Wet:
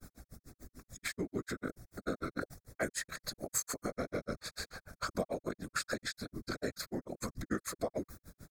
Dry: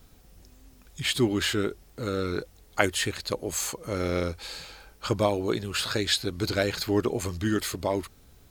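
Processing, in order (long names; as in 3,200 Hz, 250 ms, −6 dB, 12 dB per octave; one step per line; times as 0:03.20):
granular cloud 95 ms, grains 6.8 per second, spray 29 ms, pitch spread up and down by 0 semitones
downward compressor 5 to 1, threshold −39 dBFS, peak gain reduction 17 dB
phaser with its sweep stopped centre 590 Hz, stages 8
random phases in short frames
level that may fall only so fast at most 110 dB per second
level +8 dB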